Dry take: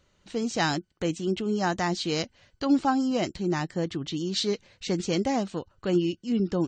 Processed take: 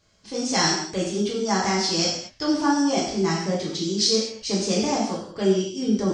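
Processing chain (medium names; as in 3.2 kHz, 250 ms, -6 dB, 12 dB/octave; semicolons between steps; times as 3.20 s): peaking EQ 5 kHz +12.5 dB 0.44 oct; gated-style reverb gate 290 ms falling, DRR -6.5 dB; speed mistake 44.1 kHz file played as 48 kHz; trim -4 dB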